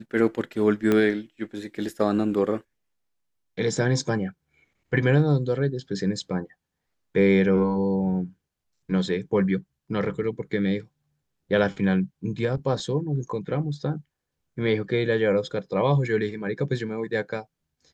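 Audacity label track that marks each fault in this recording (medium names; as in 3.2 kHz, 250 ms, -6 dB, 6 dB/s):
0.920000	0.920000	pop -10 dBFS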